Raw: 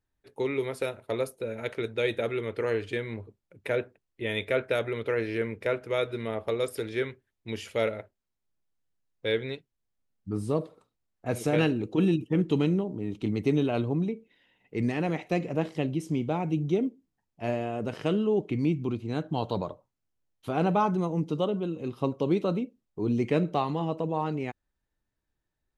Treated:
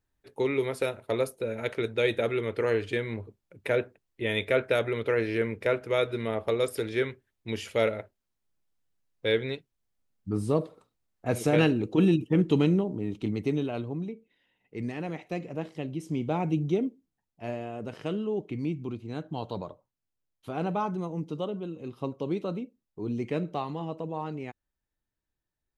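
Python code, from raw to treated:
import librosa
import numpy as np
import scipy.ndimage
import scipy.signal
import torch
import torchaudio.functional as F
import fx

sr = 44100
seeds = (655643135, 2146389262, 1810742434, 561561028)

y = fx.gain(x, sr, db=fx.line((12.93, 2.0), (13.84, -6.0), (15.84, -6.0), (16.43, 1.5), (17.44, -5.0)))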